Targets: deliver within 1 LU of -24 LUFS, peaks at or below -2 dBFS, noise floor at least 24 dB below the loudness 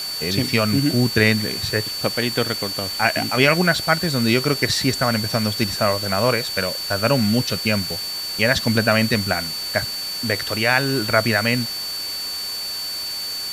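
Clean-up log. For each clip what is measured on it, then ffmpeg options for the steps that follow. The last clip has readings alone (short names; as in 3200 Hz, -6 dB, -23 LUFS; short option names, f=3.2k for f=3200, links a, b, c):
steady tone 4500 Hz; tone level -26 dBFS; noise floor -28 dBFS; noise floor target -44 dBFS; loudness -20.0 LUFS; peak -1.5 dBFS; loudness target -24.0 LUFS
-> -af "bandreject=f=4.5k:w=30"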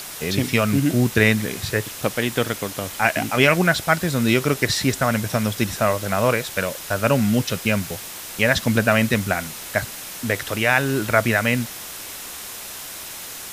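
steady tone none; noise floor -35 dBFS; noise floor target -45 dBFS
-> -af "afftdn=nr=10:nf=-35"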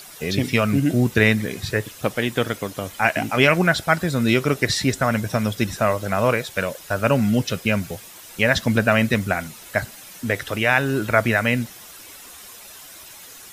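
noise floor -42 dBFS; noise floor target -45 dBFS
-> -af "afftdn=nr=6:nf=-42"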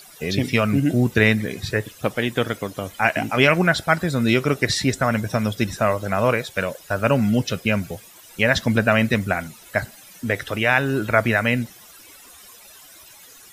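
noise floor -46 dBFS; loudness -21.0 LUFS; peak -2.0 dBFS; loudness target -24.0 LUFS
-> -af "volume=-3dB"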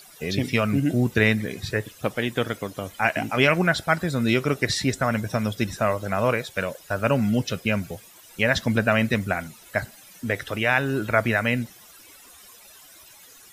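loudness -24.0 LUFS; peak -5.0 dBFS; noise floor -49 dBFS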